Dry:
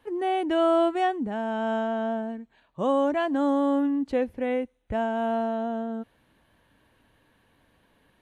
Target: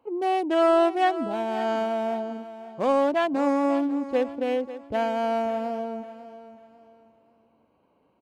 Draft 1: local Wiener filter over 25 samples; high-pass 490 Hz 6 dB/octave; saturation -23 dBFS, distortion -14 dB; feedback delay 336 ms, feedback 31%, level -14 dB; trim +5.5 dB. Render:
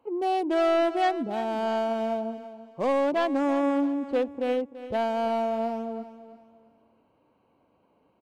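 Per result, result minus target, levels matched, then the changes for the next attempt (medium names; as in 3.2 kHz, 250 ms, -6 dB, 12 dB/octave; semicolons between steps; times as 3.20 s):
saturation: distortion +17 dB; echo 208 ms early
change: saturation -12 dBFS, distortion -31 dB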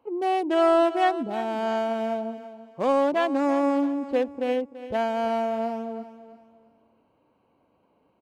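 echo 208 ms early
change: feedback delay 544 ms, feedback 31%, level -14 dB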